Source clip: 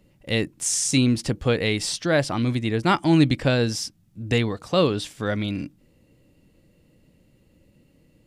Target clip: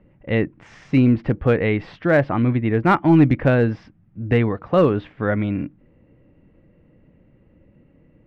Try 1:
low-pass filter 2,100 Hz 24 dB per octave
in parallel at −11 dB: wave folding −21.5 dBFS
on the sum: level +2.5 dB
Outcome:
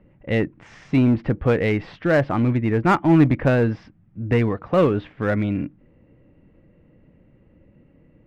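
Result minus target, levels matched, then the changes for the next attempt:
wave folding: distortion +15 dB
change: wave folding −14 dBFS

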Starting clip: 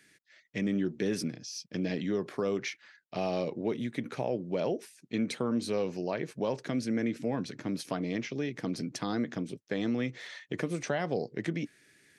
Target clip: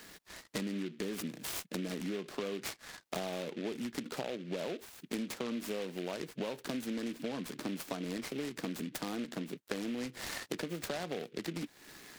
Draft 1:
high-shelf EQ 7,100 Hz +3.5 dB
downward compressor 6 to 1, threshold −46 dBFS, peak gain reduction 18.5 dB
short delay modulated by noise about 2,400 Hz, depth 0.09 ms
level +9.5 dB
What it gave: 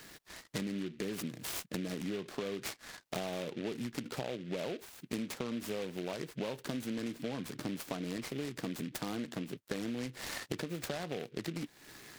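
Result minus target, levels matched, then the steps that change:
125 Hz band +3.0 dB
add first: high-pass filter 160 Hz 24 dB per octave

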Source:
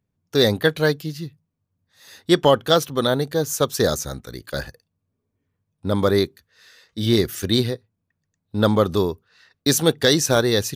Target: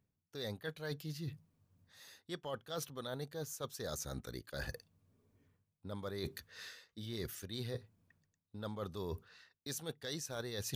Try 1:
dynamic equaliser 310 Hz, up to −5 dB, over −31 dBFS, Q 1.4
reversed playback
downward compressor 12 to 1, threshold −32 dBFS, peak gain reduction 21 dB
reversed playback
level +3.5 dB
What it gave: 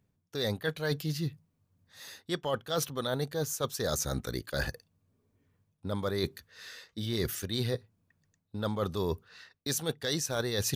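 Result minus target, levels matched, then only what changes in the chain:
downward compressor: peak gain reduction −10.5 dB
change: downward compressor 12 to 1, threshold −43.5 dBFS, peak gain reduction 31.5 dB

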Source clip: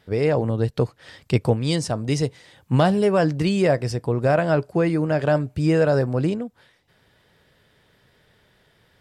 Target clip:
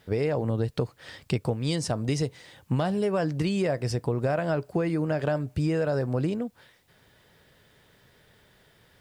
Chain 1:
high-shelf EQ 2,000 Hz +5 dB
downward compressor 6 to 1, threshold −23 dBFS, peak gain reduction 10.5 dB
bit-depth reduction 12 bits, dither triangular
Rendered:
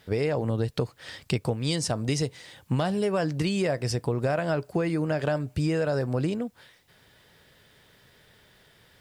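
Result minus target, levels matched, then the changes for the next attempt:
4,000 Hz band +3.5 dB
remove: high-shelf EQ 2,000 Hz +5 dB

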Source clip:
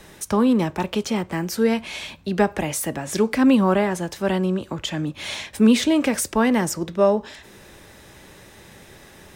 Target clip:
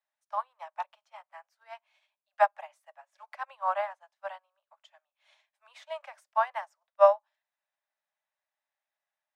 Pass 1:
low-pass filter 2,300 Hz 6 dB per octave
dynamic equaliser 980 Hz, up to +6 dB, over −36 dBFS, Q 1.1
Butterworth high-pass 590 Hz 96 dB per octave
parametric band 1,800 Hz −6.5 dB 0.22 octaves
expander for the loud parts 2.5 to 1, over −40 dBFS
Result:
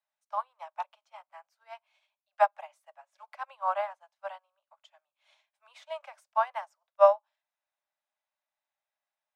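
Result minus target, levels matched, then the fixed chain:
2,000 Hz band −3.0 dB
low-pass filter 2,300 Hz 6 dB per octave
dynamic equaliser 980 Hz, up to +6 dB, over −36 dBFS, Q 1.1
Butterworth high-pass 590 Hz 96 dB per octave
expander for the loud parts 2.5 to 1, over −40 dBFS

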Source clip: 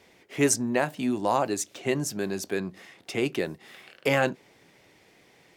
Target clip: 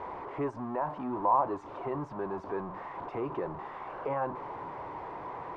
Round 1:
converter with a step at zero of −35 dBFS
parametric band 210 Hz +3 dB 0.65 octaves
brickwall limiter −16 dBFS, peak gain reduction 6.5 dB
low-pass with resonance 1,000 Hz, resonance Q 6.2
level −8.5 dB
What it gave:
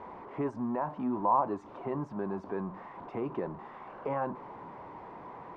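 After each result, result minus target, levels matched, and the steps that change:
converter with a step at zero: distortion −5 dB; 250 Hz band +2.5 dB
change: converter with a step at zero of −28.5 dBFS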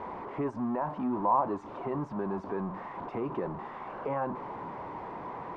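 250 Hz band +3.5 dB
change: parametric band 210 Hz −6.5 dB 0.65 octaves

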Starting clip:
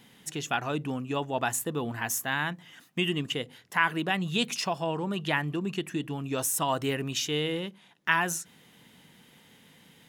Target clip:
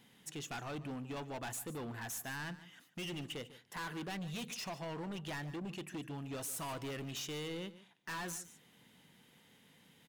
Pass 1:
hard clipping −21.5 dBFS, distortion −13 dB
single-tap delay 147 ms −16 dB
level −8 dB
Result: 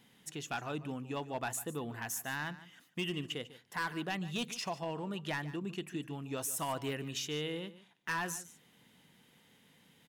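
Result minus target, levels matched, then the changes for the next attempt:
hard clipping: distortion −8 dB
change: hard clipping −31.5 dBFS, distortion −5 dB

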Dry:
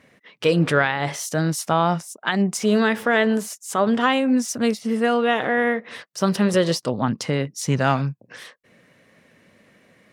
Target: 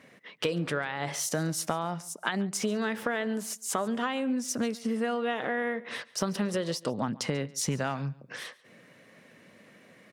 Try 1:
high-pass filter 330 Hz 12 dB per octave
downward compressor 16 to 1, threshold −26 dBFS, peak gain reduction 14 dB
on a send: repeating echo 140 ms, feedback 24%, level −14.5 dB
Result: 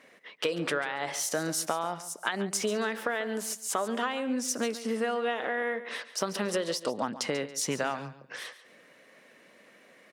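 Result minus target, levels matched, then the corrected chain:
125 Hz band −8.0 dB; echo-to-direct +7.5 dB
high-pass filter 120 Hz 12 dB per octave
downward compressor 16 to 1, threshold −26 dBFS, peak gain reduction 14.5 dB
on a send: repeating echo 140 ms, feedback 24%, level −22 dB

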